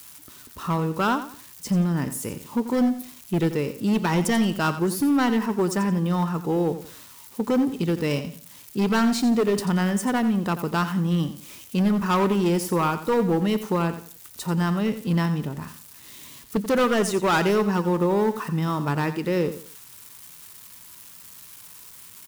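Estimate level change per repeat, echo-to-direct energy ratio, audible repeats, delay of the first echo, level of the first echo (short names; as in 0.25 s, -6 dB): -11.0 dB, -11.5 dB, 3, 88 ms, -12.0 dB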